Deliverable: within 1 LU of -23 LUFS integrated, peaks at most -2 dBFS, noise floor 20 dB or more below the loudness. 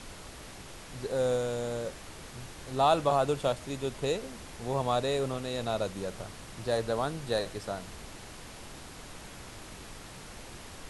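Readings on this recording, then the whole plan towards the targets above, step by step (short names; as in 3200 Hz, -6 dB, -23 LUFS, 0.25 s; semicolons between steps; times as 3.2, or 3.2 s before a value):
noise floor -47 dBFS; noise floor target -52 dBFS; loudness -31.5 LUFS; peak -13.0 dBFS; loudness target -23.0 LUFS
-> noise print and reduce 6 dB; gain +8.5 dB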